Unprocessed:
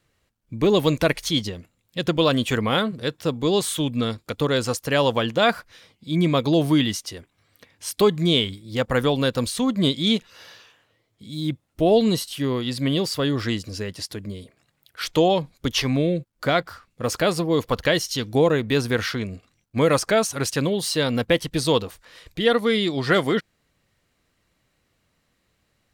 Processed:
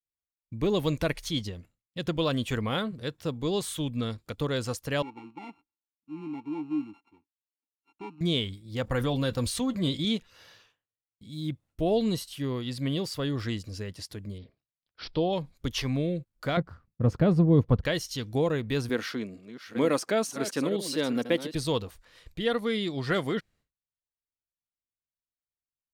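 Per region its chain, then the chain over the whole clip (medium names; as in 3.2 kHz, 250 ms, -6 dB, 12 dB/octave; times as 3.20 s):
5.02–8.21 s: sorted samples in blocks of 32 samples + vowel filter u + treble shelf 5.1 kHz -8 dB
8.83–10.05 s: gate -33 dBFS, range -10 dB + comb of notches 210 Hz + level flattener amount 50%
14.38–15.33 s: peaking EQ 1.8 kHz -8 dB 1.5 oct + careless resampling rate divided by 4×, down none, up filtered
16.57–17.85 s: companding laws mixed up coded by A + low-pass 1.2 kHz 6 dB/octave + peaking EQ 140 Hz +14 dB 2.7 oct
18.89–21.55 s: chunks repeated in reverse 469 ms, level -11 dB + resonant high-pass 260 Hz, resonance Q 1.7
whole clip: expander -47 dBFS; bass shelf 100 Hz +11 dB; trim -9 dB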